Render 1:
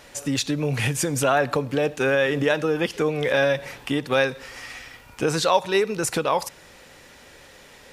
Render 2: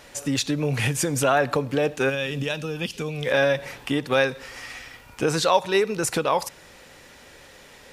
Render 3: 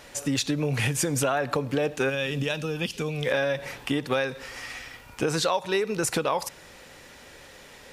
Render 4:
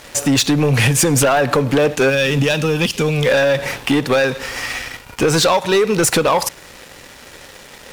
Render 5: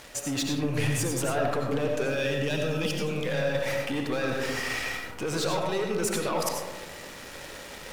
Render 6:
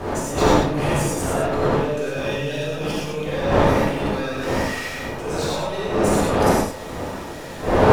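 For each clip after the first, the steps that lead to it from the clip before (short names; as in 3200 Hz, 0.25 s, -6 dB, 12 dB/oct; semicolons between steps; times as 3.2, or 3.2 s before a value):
spectral gain 2.09–3.27, 260–2300 Hz -9 dB
compressor, threshold -21 dBFS, peak gain reduction 8.5 dB
sample leveller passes 3; gain +2.5 dB
reverse; compressor 5:1, threshold -25 dBFS, peak gain reduction 12.5 dB; reverse; reverb RT60 1.2 s, pre-delay 50 ms, DRR 1 dB; gain -5 dB
wind noise 640 Hz -24 dBFS; non-linear reverb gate 0.15 s flat, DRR -5.5 dB; gain -4.5 dB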